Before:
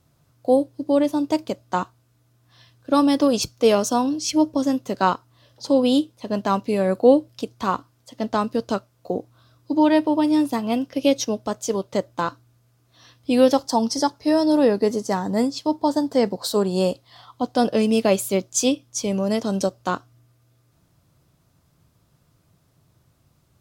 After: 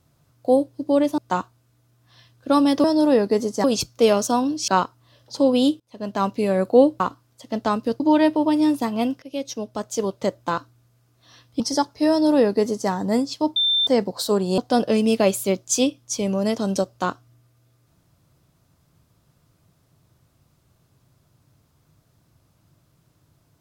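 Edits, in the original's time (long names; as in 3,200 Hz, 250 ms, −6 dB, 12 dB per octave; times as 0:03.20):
0:01.18–0:01.60: remove
0:04.30–0:04.98: remove
0:06.10–0:06.59: fade in linear, from −23.5 dB
0:07.30–0:07.68: remove
0:08.68–0:09.71: remove
0:10.93–0:11.74: fade in, from −17.5 dB
0:13.31–0:13.85: remove
0:14.35–0:15.15: duplicate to 0:03.26
0:15.81–0:16.12: beep over 3,570 Hz −16.5 dBFS
0:16.83–0:17.43: remove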